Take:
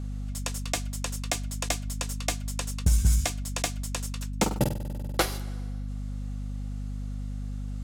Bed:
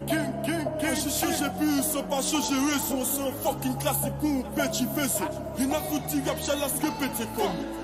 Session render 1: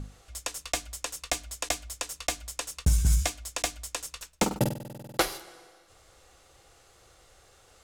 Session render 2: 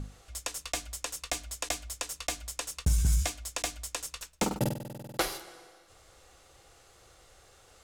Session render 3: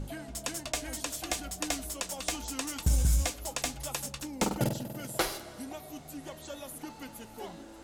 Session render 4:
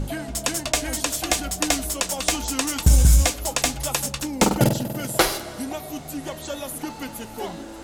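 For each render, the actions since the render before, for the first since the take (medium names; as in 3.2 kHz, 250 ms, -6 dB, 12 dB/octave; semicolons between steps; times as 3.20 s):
hum notches 50/100/150/200/250/300 Hz
peak limiter -17.5 dBFS, peak gain reduction 5 dB
add bed -15.5 dB
trim +11 dB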